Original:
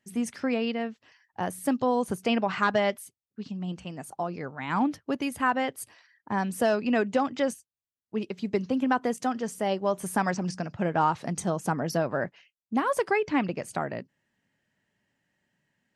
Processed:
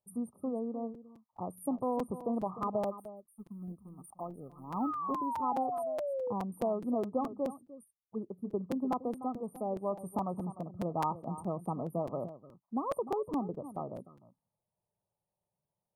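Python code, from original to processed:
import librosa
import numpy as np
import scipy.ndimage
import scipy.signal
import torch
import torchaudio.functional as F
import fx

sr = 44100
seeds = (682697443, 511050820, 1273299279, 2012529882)

y = fx.law_mismatch(x, sr, coded='A', at=(2.85, 5.26), fade=0.02)
y = fx.peak_eq(y, sr, hz=8200.0, db=6.0, octaves=0.8)
y = y + 10.0 ** (-13.5 / 20.0) * np.pad(y, (int(301 * sr / 1000.0), 0))[:len(y)]
y = fx.spec_paint(y, sr, seeds[0], shape='fall', start_s=4.63, length_s=1.7, low_hz=480.0, high_hz=1500.0, level_db=-27.0)
y = fx.peak_eq(y, sr, hz=2800.0, db=7.5, octaves=1.7)
y = fx.env_phaser(y, sr, low_hz=260.0, high_hz=2100.0, full_db=-27.0)
y = fx.brickwall_bandstop(y, sr, low_hz=1300.0, high_hz=8700.0)
y = fx.buffer_crackle(y, sr, first_s=0.94, period_s=0.21, block=256, kind='repeat')
y = F.gain(torch.from_numpy(y), -7.5).numpy()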